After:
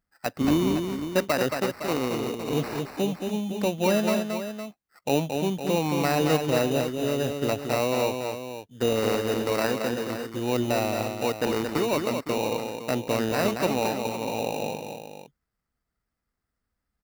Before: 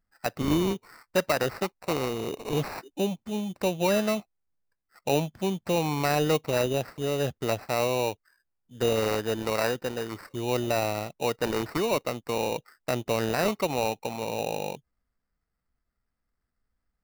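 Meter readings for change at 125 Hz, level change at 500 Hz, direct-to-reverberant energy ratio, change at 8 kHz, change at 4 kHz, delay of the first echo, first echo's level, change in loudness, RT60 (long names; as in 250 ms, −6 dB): +1.5 dB, +1.5 dB, no reverb audible, +1.5 dB, +1.5 dB, 224 ms, −5.5 dB, +2.0 dB, no reverb audible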